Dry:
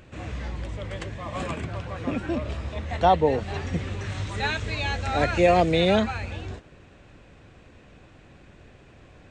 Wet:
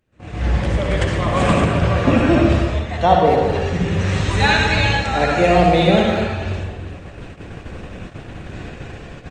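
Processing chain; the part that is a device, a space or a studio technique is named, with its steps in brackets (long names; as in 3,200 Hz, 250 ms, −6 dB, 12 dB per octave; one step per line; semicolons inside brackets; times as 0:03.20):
speakerphone in a meeting room (convolution reverb RT60 0.85 s, pre-delay 55 ms, DRR 0.5 dB; far-end echo of a speakerphone 210 ms, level −7 dB; automatic gain control gain up to 16.5 dB; noise gate −30 dBFS, range −19 dB; level −1 dB; Opus 24 kbit/s 48,000 Hz)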